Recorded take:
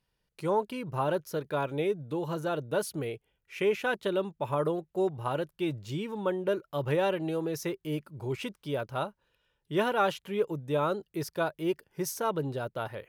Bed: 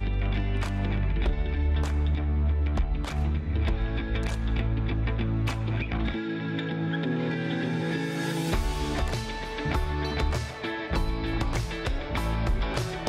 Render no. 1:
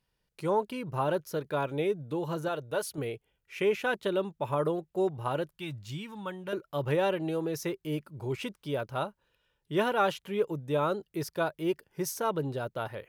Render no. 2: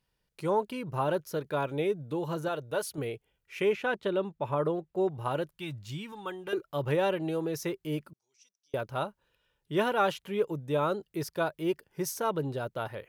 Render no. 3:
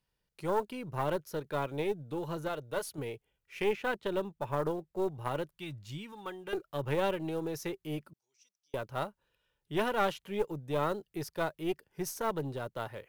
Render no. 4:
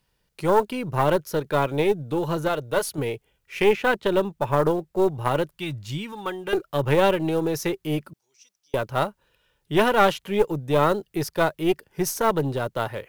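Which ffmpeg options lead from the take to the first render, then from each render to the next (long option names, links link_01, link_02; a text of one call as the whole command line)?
ffmpeg -i in.wav -filter_complex "[0:a]asettb=1/sr,asplit=3[link_01][link_02][link_03];[link_01]atrim=end=2.484[link_04];[link_02]atrim=start=2.48:end=2.98,asetpts=PTS-STARTPTS,afade=type=in:duration=0.004:curve=qsin,afade=type=out:start_time=0.496:duration=0.004:curve=qsin,equalizer=frequency=220:width=0.98:gain=-9[link_05];[link_03]atrim=start=2.976[link_06];[link_04][link_05]acrossfade=duration=0.004:curve1=hsin:curve2=qsin[link_07];[link_07][link_06]acrossfade=duration=0.004:curve1=qsin:curve2=hsin,asettb=1/sr,asplit=3[link_08][link_09][link_10];[link_08]atrim=end=5.574[link_11];[link_09]atrim=start=5.57:end=6.53,asetpts=PTS-STARTPTS,afade=type=in:duration=0.004:curve=qsin,afade=type=out:start_time=0.956:duration=0.004:curve=qsin,equalizer=frequency=430:width_type=o:width=1.5:gain=-13.5[link_12];[link_10]atrim=start=6.526[link_13];[link_11][link_12]acrossfade=duration=0.004:curve1=hsin:curve2=qsin[link_14];[link_14][link_13]acrossfade=duration=0.004:curve1=qsin:curve2=hsin" out.wav
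ffmpeg -i in.wav -filter_complex "[0:a]asettb=1/sr,asplit=3[link_01][link_02][link_03];[link_01]atrim=end=3.734[link_04];[link_02]atrim=start=3.73:end=5.09,asetpts=PTS-STARTPTS,afade=type=in:duration=0.004:curve=qsin,afade=type=out:start_time=1.356:duration=0.004:curve=qsin,lowpass=frequency=3300:poles=1[link_05];[link_03]atrim=start=5.086[link_06];[link_04][link_05]acrossfade=duration=0.004:curve1=hsin:curve2=qsin[link_07];[link_07][link_06]acrossfade=duration=0.004:curve1=qsin:curve2=hsin,asettb=1/sr,asplit=3[link_08][link_09][link_10];[link_08]atrim=end=6.124[link_11];[link_09]atrim=start=6.12:end=6.64,asetpts=PTS-STARTPTS,afade=type=in:duration=0.004:curve=qsin,afade=type=out:start_time=0.516:duration=0.004:curve=qsin,aecho=1:1:2.5:0.59,atrim=end_sample=22932[link_12];[link_10]atrim=start=6.636[link_13];[link_11][link_12]acrossfade=duration=0.004:curve1=hsin:curve2=qsin[link_14];[link_14][link_13]acrossfade=duration=0.004:curve1=qsin:curve2=hsin,asettb=1/sr,asplit=3[link_15][link_16][link_17];[link_15]atrim=end=8.134[link_18];[link_16]atrim=start=8.13:end=8.74,asetpts=PTS-STARTPTS,afade=type=in:duration=0.004:curve=qsin,afade=type=out:start_time=0.606:duration=0.004:curve=qsin,bandpass=frequency=5800:width_type=q:width=16[link_19];[link_17]atrim=start=8.736[link_20];[link_18][link_19]acrossfade=duration=0.004:curve1=hsin:curve2=qsin[link_21];[link_21][link_20]acrossfade=duration=0.004:curve1=qsin:curve2=hsin" out.wav
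ffmpeg -i in.wav -filter_complex "[0:a]acrossover=split=420[link_01][link_02];[link_02]acrusher=bits=6:mode=log:mix=0:aa=0.000001[link_03];[link_01][link_03]amix=inputs=2:normalize=0,aeval=exprs='(tanh(7.94*val(0)+0.7)-tanh(0.7))/7.94':channel_layout=same" out.wav
ffmpeg -i in.wav -af "volume=11.5dB" out.wav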